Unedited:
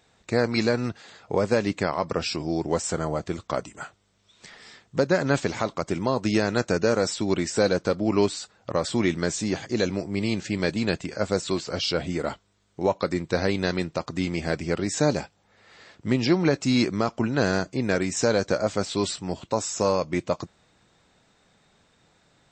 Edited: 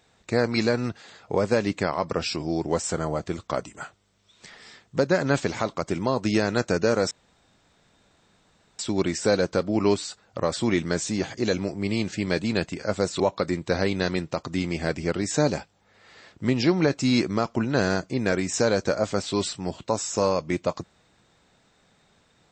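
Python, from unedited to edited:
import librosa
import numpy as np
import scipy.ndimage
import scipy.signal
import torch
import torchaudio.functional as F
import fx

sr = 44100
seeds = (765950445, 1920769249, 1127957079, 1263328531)

y = fx.edit(x, sr, fx.insert_room_tone(at_s=7.11, length_s=1.68),
    fx.cut(start_s=11.52, length_s=1.31), tone=tone)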